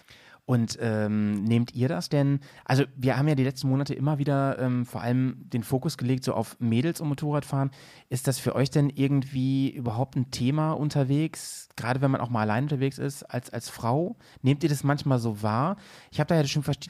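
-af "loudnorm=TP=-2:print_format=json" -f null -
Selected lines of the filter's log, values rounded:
"input_i" : "-26.9",
"input_tp" : "-9.7",
"input_lra" : "1.8",
"input_thresh" : "-37.0",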